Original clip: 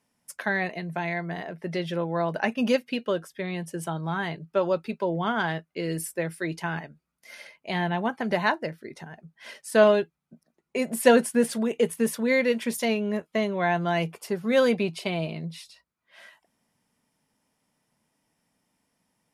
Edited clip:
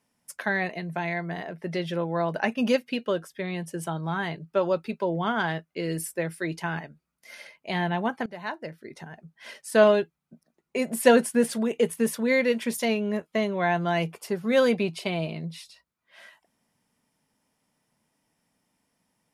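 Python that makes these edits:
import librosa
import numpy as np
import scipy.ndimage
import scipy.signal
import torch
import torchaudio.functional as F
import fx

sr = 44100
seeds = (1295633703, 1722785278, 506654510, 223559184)

y = fx.edit(x, sr, fx.fade_in_from(start_s=8.26, length_s=0.79, floor_db=-22.5), tone=tone)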